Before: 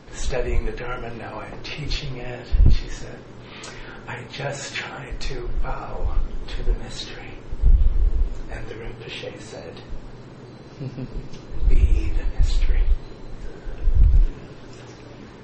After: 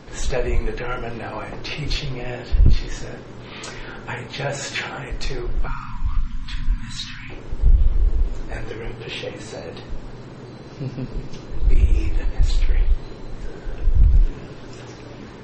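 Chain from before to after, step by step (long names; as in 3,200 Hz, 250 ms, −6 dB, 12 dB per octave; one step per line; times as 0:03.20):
0:05.67–0:07.30: Chebyshev band-stop filter 270–970 Hz, order 4
in parallel at −6.5 dB: soft clipping −22.5 dBFS, distortion −4 dB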